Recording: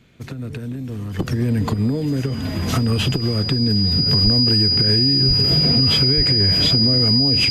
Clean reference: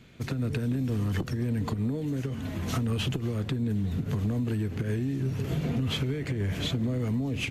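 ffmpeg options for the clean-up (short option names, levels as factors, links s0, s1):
-filter_complex "[0:a]bandreject=f=4900:w=30,asplit=3[s0][s1][s2];[s0]afade=t=out:st=4.23:d=0.02[s3];[s1]highpass=f=140:w=0.5412,highpass=f=140:w=1.3066,afade=t=in:st=4.23:d=0.02,afade=t=out:st=4.35:d=0.02[s4];[s2]afade=t=in:st=4.35:d=0.02[s5];[s3][s4][s5]amix=inputs=3:normalize=0,asplit=3[s6][s7][s8];[s6]afade=t=out:st=5.27:d=0.02[s9];[s7]highpass=f=140:w=0.5412,highpass=f=140:w=1.3066,afade=t=in:st=5.27:d=0.02,afade=t=out:st=5.39:d=0.02[s10];[s8]afade=t=in:st=5.39:d=0.02[s11];[s9][s10][s11]amix=inputs=3:normalize=0,asplit=3[s12][s13][s14];[s12]afade=t=out:st=6.16:d=0.02[s15];[s13]highpass=f=140:w=0.5412,highpass=f=140:w=1.3066,afade=t=in:st=6.16:d=0.02,afade=t=out:st=6.28:d=0.02[s16];[s14]afade=t=in:st=6.28:d=0.02[s17];[s15][s16][s17]amix=inputs=3:normalize=0,asetnsamples=n=441:p=0,asendcmd='1.19 volume volume -9.5dB',volume=1"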